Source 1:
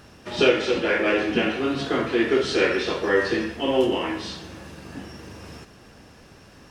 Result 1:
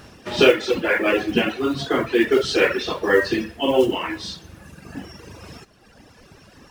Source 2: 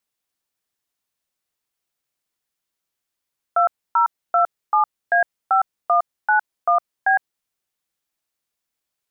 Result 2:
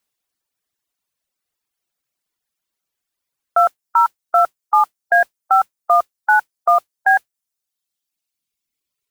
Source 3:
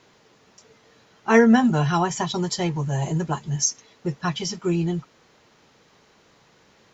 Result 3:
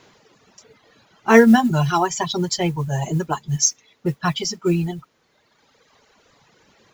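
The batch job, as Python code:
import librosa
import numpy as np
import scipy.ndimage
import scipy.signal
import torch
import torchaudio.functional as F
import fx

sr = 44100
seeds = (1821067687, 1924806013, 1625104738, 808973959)

y = fx.dereverb_blind(x, sr, rt60_s=1.9)
y = fx.mod_noise(y, sr, seeds[0], snr_db=31)
y = y * 10.0 ** (4.5 / 20.0)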